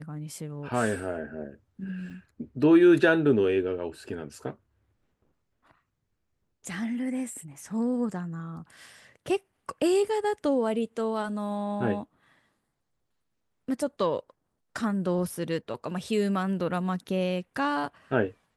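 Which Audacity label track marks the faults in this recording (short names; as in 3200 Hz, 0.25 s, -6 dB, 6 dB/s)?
2.100000	2.110000	gap 5.8 ms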